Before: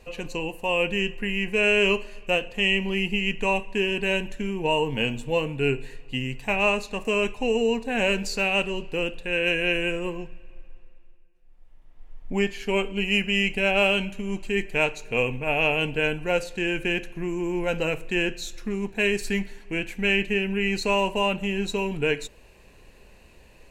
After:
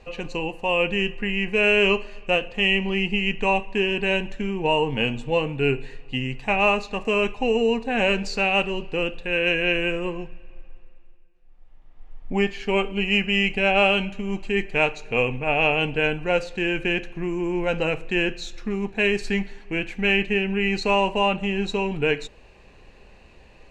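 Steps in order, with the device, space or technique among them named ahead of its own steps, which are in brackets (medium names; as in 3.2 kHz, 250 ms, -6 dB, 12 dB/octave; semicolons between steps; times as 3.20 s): inside a cardboard box (low-pass 5.2 kHz 12 dB/octave; small resonant body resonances 790/1200 Hz, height 6 dB); trim +2 dB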